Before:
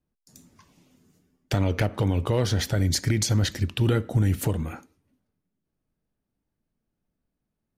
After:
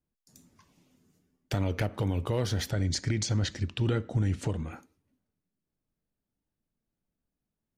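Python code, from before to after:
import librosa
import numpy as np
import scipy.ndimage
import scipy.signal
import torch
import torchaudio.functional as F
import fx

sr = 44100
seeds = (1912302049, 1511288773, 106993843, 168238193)

y = fx.lowpass(x, sr, hz=7700.0, slope=24, at=(2.71, 4.73))
y = y * librosa.db_to_amplitude(-5.5)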